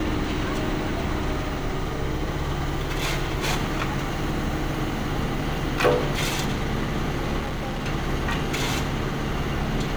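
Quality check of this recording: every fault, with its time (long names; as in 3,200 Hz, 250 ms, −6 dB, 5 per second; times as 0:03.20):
0:07.39–0:07.88: clipping −25 dBFS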